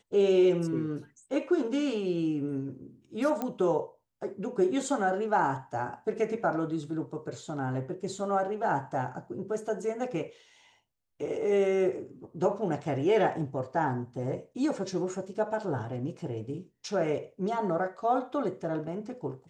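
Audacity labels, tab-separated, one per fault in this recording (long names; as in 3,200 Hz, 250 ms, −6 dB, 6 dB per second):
3.420000	3.420000	click −19 dBFS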